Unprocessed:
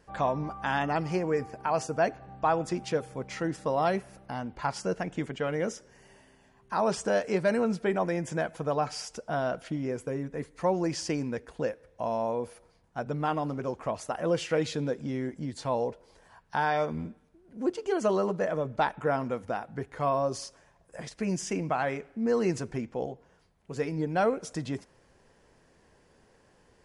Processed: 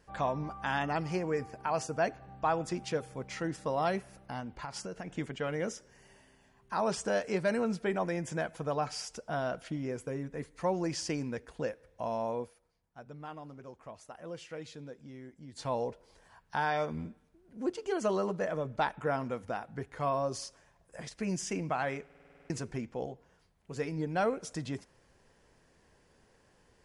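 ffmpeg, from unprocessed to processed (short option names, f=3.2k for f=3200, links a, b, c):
-filter_complex "[0:a]asettb=1/sr,asplit=3[a][b][c];[a]atrim=end=4.404[d];[b]atrim=start=4.4:end=5.16,asetpts=PTS-STARTPTS,afade=t=in:d=0.004:c=qsin,afade=t=out:st=0.756:d=0.004:c=qsin,acompressor=threshold=-32dB:ratio=10:attack=3.2:release=140:knee=1:detection=peak[e];[c]atrim=start=5.156[f];[d][e]acrossfade=d=0.004:c1=hsin:c2=qsin[g];[g][f]acrossfade=d=0.004:c1=qsin:c2=hsin,asplit=12[h][i][j][k][l][m][n][o][p][q][r][s];[h]atrim=end=12.9,asetpts=PTS-STARTPTS,afade=t=out:st=12.42:d=0.48:c=exp:silence=0.266073[t];[i]atrim=start=12.9:end=15.12,asetpts=PTS-STARTPTS,volume=-11.5dB[u];[j]atrim=start=15.12:end=22.102,asetpts=PTS-STARTPTS,afade=t=in:d=0.48:c=exp:silence=0.266073[v];[k]atrim=start=22.048:end=22.102[w];[l]atrim=start=22.048:end=22.102[x];[m]atrim=start=22.048:end=22.102[y];[n]atrim=start=22.048:end=22.102[z];[o]atrim=start=22.048:end=22.102[aa];[p]atrim=start=22.048:end=22.102[ab];[q]atrim=start=22.048:end=22.102[ac];[r]atrim=start=22.048:end=22.102[ad];[s]atrim=start=22.498[ae];[t][u][v]concat=n=3:v=0:a=1[af];[af][w]acrossfade=d=0.004:c1=hsin:c2=hsin[ag];[ag][x]acrossfade=d=0.004:c1=hsin:c2=hsin[ah];[ah][y]acrossfade=d=0.004:c1=hsin:c2=hsin[ai];[ai][z]acrossfade=d=0.004:c1=hsin:c2=hsin[aj];[aj][aa]acrossfade=d=0.004:c1=hsin:c2=hsin[ak];[ak][ab]acrossfade=d=0.004:c1=hsin:c2=hsin[al];[al][ac]acrossfade=d=0.004:c1=hsin:c2=hsin[am];[am][ad]acrossfade=d=0.004:c1=hsin:c2=hsin[an];[an][ae]acrossfade=d=0.004:c1=hsin:c2=hsin,equalizer=f=440:w=0.34:g=-3,volume=-1.5dB"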